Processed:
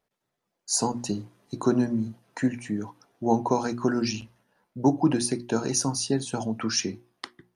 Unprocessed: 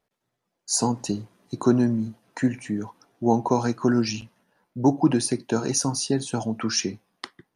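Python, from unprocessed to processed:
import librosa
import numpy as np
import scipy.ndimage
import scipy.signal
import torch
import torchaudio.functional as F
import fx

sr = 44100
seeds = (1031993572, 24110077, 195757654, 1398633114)

y = fx.hum_notches(x, sr, base_hz=60, count=6)
y = y * 10.0 ** (-1.5 / 20.0)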